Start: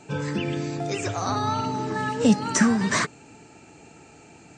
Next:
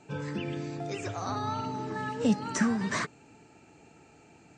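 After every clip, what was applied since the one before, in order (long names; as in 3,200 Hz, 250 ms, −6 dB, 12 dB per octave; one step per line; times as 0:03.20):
high-shelf EQ 6,100 Hz −7 dB
level −7 dB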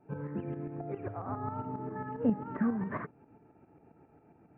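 Gaussian smoothing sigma 5.6 samples
shaped tremolo saw up 7.4 Hz, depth 60%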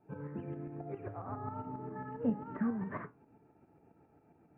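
flanger 0.74 Hz, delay 9.1 ms, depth 6.1 ms, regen −67%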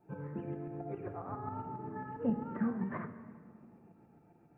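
rectangular room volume 3,900 cubic metres, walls mixed, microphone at 0.85 metres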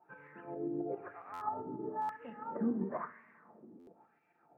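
LFO wah 1 Hz 310–2,300 Hz, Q 2.9
buffer that repeats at 0:01.33/0:02.01/0:03.79, samples 512, times 6
level +9.5 dB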